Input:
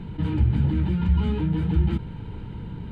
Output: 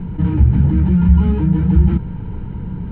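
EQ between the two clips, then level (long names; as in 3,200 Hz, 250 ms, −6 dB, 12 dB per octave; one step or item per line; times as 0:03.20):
low-pass filter 1,900 Hz 12 dB per octave
low-shelf EQ 72 Hz +7 dB
parametric band 180 Hz +6 dB 0.25 octaves
+5.5 dB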